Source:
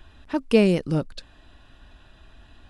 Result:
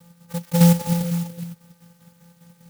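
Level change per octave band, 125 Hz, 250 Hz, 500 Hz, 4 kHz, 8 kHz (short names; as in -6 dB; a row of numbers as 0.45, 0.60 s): +9.5, +3.0, -6.0, +1.0, +17.0 dB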